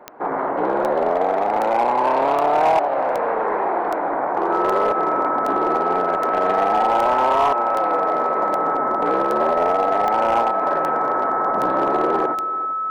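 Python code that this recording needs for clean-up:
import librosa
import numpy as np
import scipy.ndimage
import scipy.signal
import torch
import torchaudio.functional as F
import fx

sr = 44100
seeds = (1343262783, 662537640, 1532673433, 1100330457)

y = fx.fix_declip(x, sr, threshold_db=-11.5)
y = fx.fix_declick_ar(y, sr, threshold=10.0)
y = fx.notch(y, sr, hz=1300.0, q=30.0)
y = fx.fix_echo_inverse(y, sr, delay_ms=392, level_db=-16.5)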